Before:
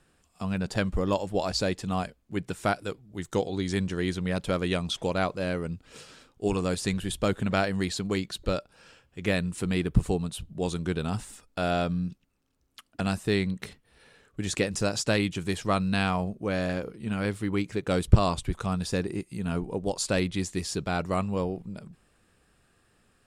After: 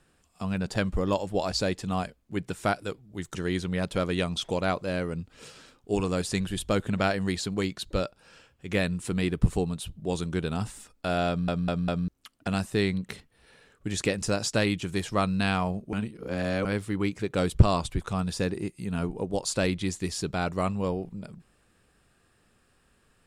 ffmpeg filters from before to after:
-filter_complex "[0:a]asplit=8[s0][s1][s2][s3][s4][s5][s6][s7];[s0]atrim=end=3.352[s8];[s1]atrim=start=3.878:end=12.012[s9];[s2]atrim=start=11.808:end=12.012[s10];[s3]atrim=start=11.808:end=12.012[s11];[s4]atrim=start=11.808:end=12.012[s12];[s5]atrim=start=12.608:end=16.462[s13];[s6]atrim=start=16.458:end=17.182,asetpts=PTS-STARTPTS,areverse[s14];[s7]atrim=start=17.178[s15];[s8][s9]acrossfade=d=0.004:c1=hsin:c2=hsin[s16];[s16][s10]acrossfade=d=0.004:c1=hsin:c2=hsin[s17];[s17][s11]acrossfade=d=0.004:c1=hsin:c2=hsin[s18];[s18][s12]acrossfade=d=0.004:c1=hsin:c2=hsin[s19];[s19][s13]acrossfade=d=0.004:c1=hsin:c2=hsin[s20];[s20][s14]acrossfade=d=0.004:c1=hsin:c2=hsin[s21];[s21][s15]acrossfade=d=0.004:c1=hsin:c2=hsin"

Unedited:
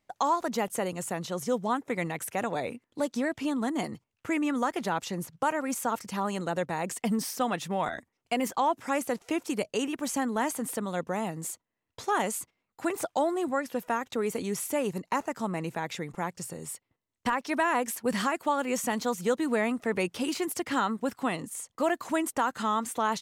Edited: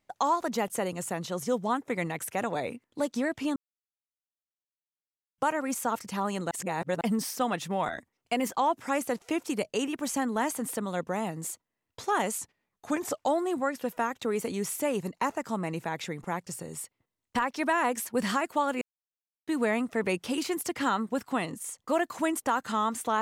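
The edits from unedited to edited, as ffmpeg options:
-filter_complex "[0:a]asplit=9[s0][s1][s2][s3][s4][s5][s6][s7][s8];[s0]atrim=end=3.56,asetpts=PTS-STARTPTS,afade=t=out:st=3.556:d=0.004:c=hsin[s9];[s1]atrim=start=3.56:end=5.38,asetpts=PTS-STARTPTS,volume=0[s10];[s2]atrim=start=5.38:end=6.512,asetpts=PTS-STARTPTS,afade=t=in:d=0.004:c=hsin[s11];[s3]atrim=start=6.508:end=7.012,asetpts=PTS-STARTPTS,areverse[s12];[s4]atrim=start=7.008:end=12.384[s13];[s5]atrim=start=12.38:end=13.14,asetpts=PTS-STARTPTS,asetrate=39249,aresample=44100,atrim=end_sample=37658,asetpts=PTS-STARTPTS[s14];[s6]atrim=start=13.136:end=18.72,asetpts=PTS-STARTPTS,afade=t=out:st=5.58:d=0.004:c=hsin[s15];[s7]atrim=start=18.72:end=19.38,asetpts=PTS-STARTPTS,volume=0[s16];[s8]atrim=start=19.38,asetpts=PTS-STARTPTS,afade=t=in:d=0.004:c=hsin[s17];[s9][s10][s11]concat=n=3:v=0:a=1[s18];[s18][s12]acrossfade=d=0.004:c1=hsin:c2=hsin[s19];[s19][s13]acrossfade=d=0.004:c1=hsin:c2=hsin[s20];[s20][s14]acrossfade=d=0.004:c1=hsin:c2=hsin[s21];[s15][s16][s17]concat=n=3:v=0:a=1[s22];[s21][s22]acrossfade=d=0.004:c1=hsin:c2=hsin"

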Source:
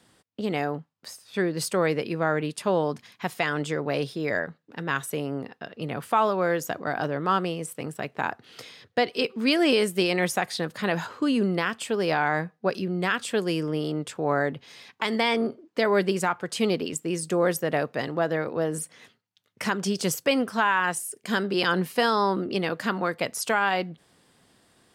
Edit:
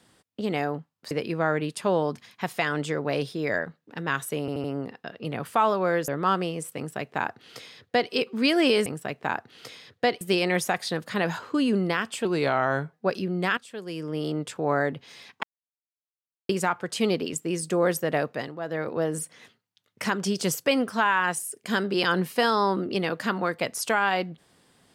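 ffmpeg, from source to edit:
-filter_complex "[0:a]asplit=15[s0][s1][s2][s3][s4][s5][s6][s7][s8][s9][s10][s11][s12][s13][s14];[s0]atrim=end=1.112[s15];[s1]atrim=start=1.918:end=5.292[s16];[s2]atrim=start=5.208:end=5.292[s17];[s3]atrim=start=5.208:end=5.292[s18];[s4]atrim=start=5.208:end=6.652[s19];[s5]atrim=start=7.108:end=9.892[s20];[s6]atrim=start=7.798:end=9.152[s21];[s7]atrim=start=9.888:end=11.934[s22];[s8]atrim=start=11.93:end=12.53,asetpts=PTS-STARTPTS,asetrate=38808,aresample=44100,atrim=end_sample=30068,asetpts=PTS-STARTPTS[s23];[s9]atrim=start=12.526:end=13.17,asetpts=PTS-STARTPTS,afade=t=out:st=0.64:d=0.004:c=hsin:silence=0.188365[s24];[s10]atrim=start=13.17:end=15.03,asetpts=PTS-STARTPTS,afade=t=in:d=0.7:c=qua:silence=0.188365,afade=t=out:st=1.856:d=0.004:c=hsin[s25];[s11]atrim=start=15.03:end=16.09,asetpts=PTS-STARTPTS,volume=0[s26];[s12]atrim=start=16.09:end=18.18,asetpts=PTS-STARTPTS,afade=t=in:d=0.004:c=hsin,afade=t=out:st=1.79:d=0.3:silence=0.298538[s27];[s13]atrim=start=18.18:end=18.19,asetpts=PTS-STARTPTS,volume=0.299[s28];[s14]atrim=start=18.19,asetpts=PTS-STARTPTS,afade=t=in:d=0.3:silence=0.298538[s29];[s15][s16]acrossfade=d=0.004:c1=hsin:c2=hsin[s30];[s30][s17]acrossfade=d=0.004:c1=hsin:c2=hsin[s31];[s31][s18]acrossfade=d=0.004:c1=hsin:c2=hsin[s32];[s32][s19]acrossfade=d=0.004:c1=hsin:c2=hsin[s33];[s33][s20]acrossfade=d=0.004:c1=hsin:c2=hsin[s34];[s34][s21]acrossfade=d=0.004:c1=hsin:c2=hsin[s35];[s35][s22]acrossfade=d=0.004:c1=hsin:c2=hsin[s36];[s36][s23]acrossfade=d=0.004:c1=hsin:c2=hsin[s37];[s24][s25][s26][s27][s28][s29]concat=n=6:v=0:a=1[s38];[s37][s38]acrossfade=d=0.004:c1=hsin:c2=hsin"

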